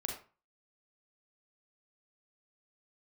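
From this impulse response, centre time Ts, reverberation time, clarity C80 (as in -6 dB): 29 ms, 0.35 s, 10.0 dB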